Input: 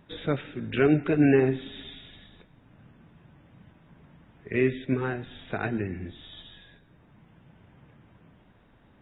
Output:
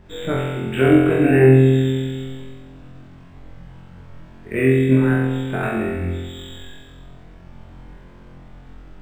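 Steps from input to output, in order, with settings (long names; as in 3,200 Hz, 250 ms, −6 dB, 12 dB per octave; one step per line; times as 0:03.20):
spring reverb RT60 1.8 s, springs 35/53 ms, chirp 55 ms, DRR 10.5 dB
background noise brown −50 dBFS
flutter between parallel walls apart 3.9 metres, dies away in 1.2 s
linearly interpolated sample-rate reduction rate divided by 4×
level +2.5 dB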